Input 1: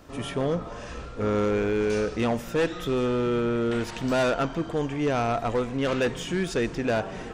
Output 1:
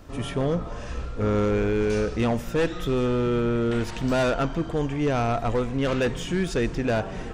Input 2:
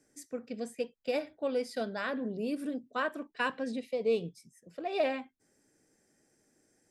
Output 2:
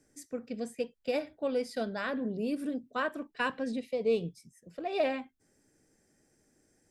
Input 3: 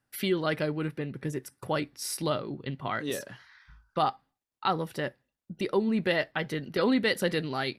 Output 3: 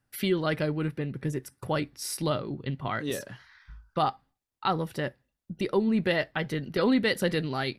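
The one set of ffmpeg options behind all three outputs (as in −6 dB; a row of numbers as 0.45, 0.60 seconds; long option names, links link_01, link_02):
-af "lowshelf=frequency=110:gain=10.5"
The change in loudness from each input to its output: +1.0, +0.5, +1.0 LU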